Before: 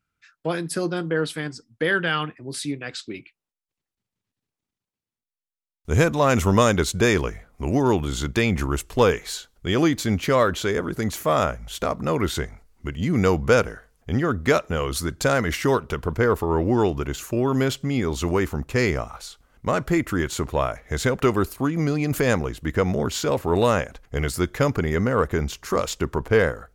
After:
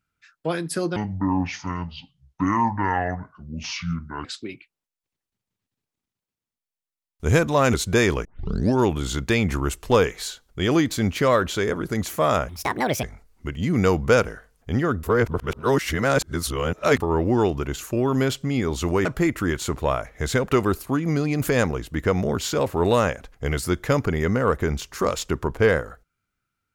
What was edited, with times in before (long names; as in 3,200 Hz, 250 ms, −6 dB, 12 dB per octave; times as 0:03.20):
0:00.96–0:02.90: play speed 59%
0:06.39–0:06.81: remove
0:07.32: tape start 0.53 s
0:11.56–0:12.43: play speed 160%
0:14.43–0:16.40: reverse
0:18.45–0:19.76: remove